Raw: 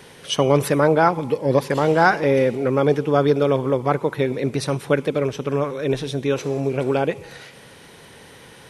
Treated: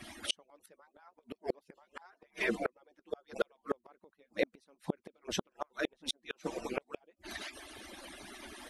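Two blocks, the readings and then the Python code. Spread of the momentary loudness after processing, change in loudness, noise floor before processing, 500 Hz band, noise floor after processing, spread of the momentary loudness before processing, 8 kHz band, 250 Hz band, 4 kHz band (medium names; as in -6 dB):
13 LU, -19.5 dB, -45 dBFS, -21.5 dB, -82 dBFS, 7 LU, -11.0 dB, -20.5 dB, -9.5 dB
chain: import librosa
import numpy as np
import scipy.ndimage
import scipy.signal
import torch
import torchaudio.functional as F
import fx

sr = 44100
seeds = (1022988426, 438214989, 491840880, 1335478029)

y = fx.hpss_only(x, sr, part='percussive')
y = fx.gate_flip(y, sr, shuts_db=-19.0, range_db=-41)
y = y * 10.0 ** (1.0 / 20.0)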